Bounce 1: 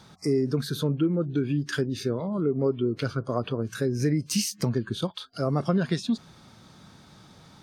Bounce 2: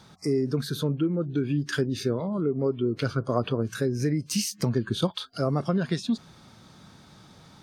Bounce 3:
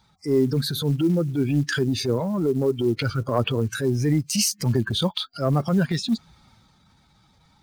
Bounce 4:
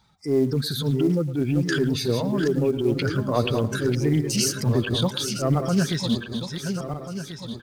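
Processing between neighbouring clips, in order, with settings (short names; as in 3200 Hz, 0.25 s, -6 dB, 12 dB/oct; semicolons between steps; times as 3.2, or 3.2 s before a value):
vocal rider 0.5 s
per-bin expansion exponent 1.5; transient shaper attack -8 dB, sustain +4 dB; short-mantissa float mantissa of 4-bit; gain +8.5 dB
regenerating reverse delay 0.694 s, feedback 60%, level -7 dB; speakerphone echo 0.11 s, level -15 dB; Doppler distortion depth 0.11 ms; gain -1 dB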